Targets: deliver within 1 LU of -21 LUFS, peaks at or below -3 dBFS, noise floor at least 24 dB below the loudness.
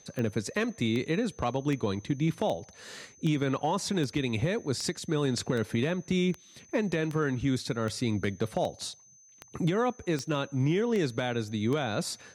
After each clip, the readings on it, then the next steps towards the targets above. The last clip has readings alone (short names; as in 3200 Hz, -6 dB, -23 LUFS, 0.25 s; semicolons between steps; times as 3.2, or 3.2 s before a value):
clicks 16; steady tone 6200 Hz; tone level -55 dBFS; loudness -30.0 LUFS; peak -17.0 dBFS; loudness target -21.0 LUFS
-> de-click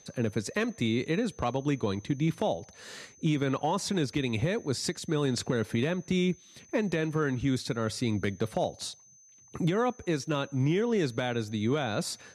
clicks 0; steady tone 6200 Hz; tone level -55 dBFS
-> notch 6200 Hz, Q 30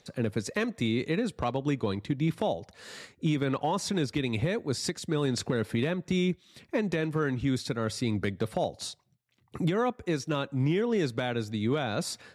steady tone none; loudness -30.0 LUFS; peak -17.0 dBFS; loudness target -21.0 LUFS
-> gain +9 dB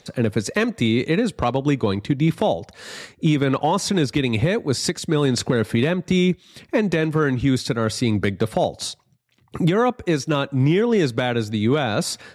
loudness -21.0 LUFS; peak -8.0 dBFS; noise floor -57 dBFS